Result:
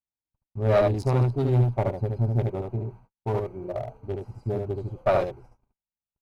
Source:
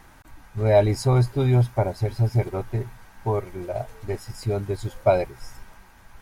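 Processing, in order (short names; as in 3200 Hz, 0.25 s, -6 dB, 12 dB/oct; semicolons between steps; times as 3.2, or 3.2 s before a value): Wiener smoothing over 25 samples; HPF 65 Hz 6 dB/oct; gate -44 dBFS, range -49 dB; echo 73 ms -4 dB; tube stage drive 13 dB, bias 0.55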